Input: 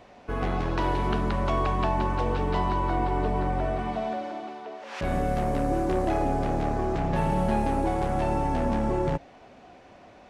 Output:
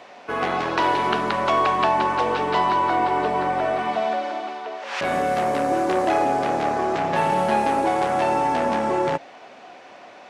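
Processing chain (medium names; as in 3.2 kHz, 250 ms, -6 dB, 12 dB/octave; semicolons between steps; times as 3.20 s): frequency weighting A; trim +9 dB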